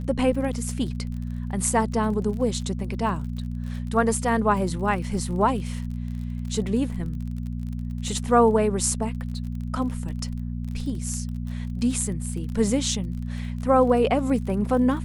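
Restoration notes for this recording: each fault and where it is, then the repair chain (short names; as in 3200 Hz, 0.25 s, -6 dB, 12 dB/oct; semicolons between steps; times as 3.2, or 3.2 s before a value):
crackle 34/s -34 dBFS
hum 60 Hz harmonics 4 -30 dBFS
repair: de-click; de-hum 60 Hz, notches 4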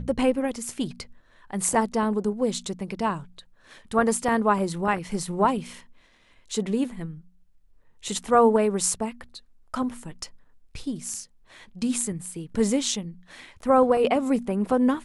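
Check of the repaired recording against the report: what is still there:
none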